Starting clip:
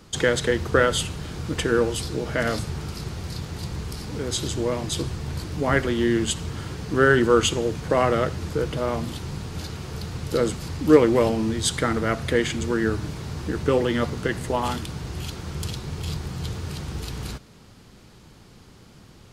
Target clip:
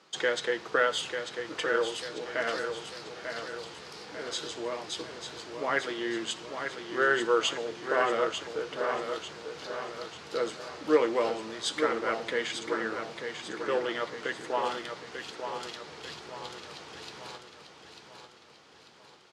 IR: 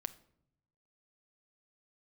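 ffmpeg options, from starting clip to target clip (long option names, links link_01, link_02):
-filter_complex "[0:a]asplit=2[link_01][link_02];[1:a]atrim=start_sample=2205,lowshelf=frequency=140:gain=12[link_03];[link_02][link_03]afir=irnorm=-1:irlink=0,volume=-7.5dB[link_04];[link_01][link_04]amix=inputs=2:normalize=0,flanger=delay=5.3:depth=9.2:regen=-58:speed=0.15:shape=sinusoidal,highpass=510,lowpass=5500,aecho=1:1:894|1788|2682|3576|4470|5364:0.447|0.21|0.0987|0.0464|0.0218|0.0102,volume=-3dB"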